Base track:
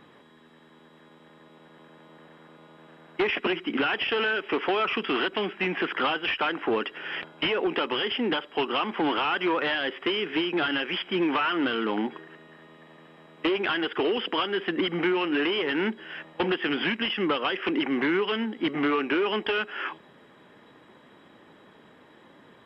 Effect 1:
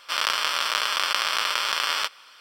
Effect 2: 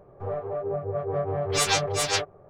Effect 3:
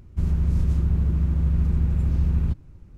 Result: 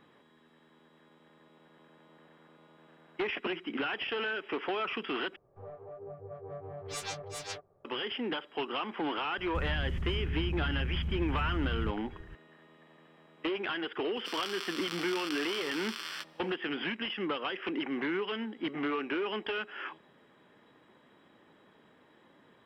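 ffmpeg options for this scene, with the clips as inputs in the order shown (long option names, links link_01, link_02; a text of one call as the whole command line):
ffmpeg -i bed.wav -i cue0.wav -i cue1.wav -i cue2.wav -filter_complex "[0:a]volume=-8dB[link_01];[3:a]acompressor=threshold=-27dB:ratio=6:attack=3.2:release=140:knee=1:detection=peak[link_02];[1:a]highpass=1200[link_03];[link_01]asplit=2[link_04][link_05];[link_04]atrim=end=5.364[link_06];[2:a]atrim=end=2.49,asetpts=PTS-STARTPTS,volume=-15.5dB[link_07];[link_05]atrim=start=7.846[link_08];[link_02]atrim=end=2.97,asetpts=PTS-STARTPTS,volume=-3.5dB,afade=type=in:duration=0.004:curve=hsin,afade=type=out:start_time=2.966:duration=0.004:curve=hsin,adelay=413658S[link_09];[link_03]atrim=end=2.4,asetpts=PTS-STARTPTS,volume=-15dB,afade=type=in:duration=0.004:curve=hsin,afade=type=out:start_time=2.396:duration=0.004:curve=hsin,adelay=14160[link_10];[link_06][link_07]acrossfade=duration=0.004:curve1=hsin:curve2=hsin[link_11];[link_11][link_08]acrossfade=duration=0.004:curve1=hsin:curve2=hsin[link_12];[link_12][link_09][link_10]amix=inputs=3:normalize=0" out.wav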